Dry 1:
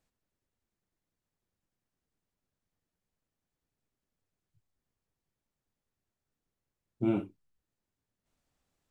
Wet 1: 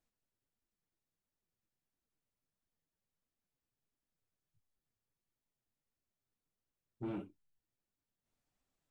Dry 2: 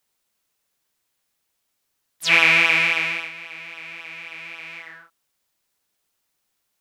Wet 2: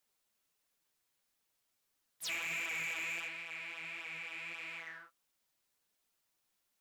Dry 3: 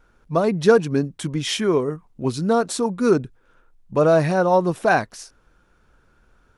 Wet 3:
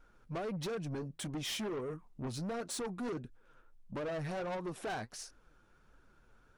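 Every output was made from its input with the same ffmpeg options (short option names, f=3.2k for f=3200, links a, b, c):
-af "acompressor=threshold=-22dB:ratio=6,flanger=delay=2.7:depth=7:regen=50:speed=1.5:shape=triangular,asoftclip=type=tanh:threshold=-32.5dB,volume=-2.5dB"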